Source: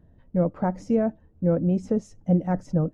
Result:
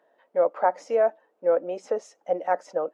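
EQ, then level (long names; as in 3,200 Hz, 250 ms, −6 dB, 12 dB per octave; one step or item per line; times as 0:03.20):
high-pass filter 530 Hz 24 dB per octave
high-shelf EQ 5,600 Hz −11 dB
+8.0 dB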